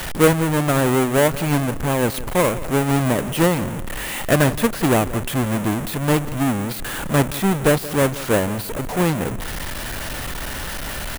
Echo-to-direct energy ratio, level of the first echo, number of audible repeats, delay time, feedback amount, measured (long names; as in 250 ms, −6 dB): −16.5 dB, −17.0 dB, 2, 175 ms, 33%